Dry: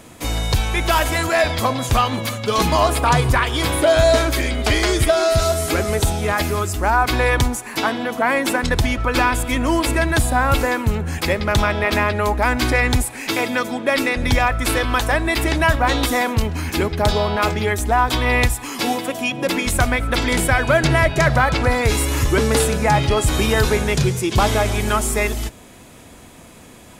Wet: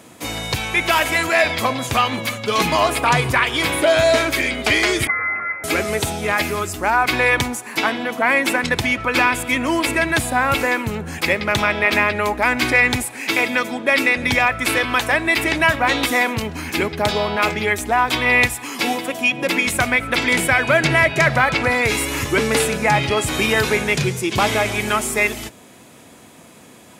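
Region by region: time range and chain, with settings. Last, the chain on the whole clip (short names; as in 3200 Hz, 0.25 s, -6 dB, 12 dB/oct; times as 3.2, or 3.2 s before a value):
5.07–5.64 HPF 1200 Hz + inverted band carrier 2700 Hz
whole clip: HPF 130 Hz 12 dB/oct; dynamic EQ 2300 Hz, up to +8 dB, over -36 dBFS, Q 1.8; gain -1 dB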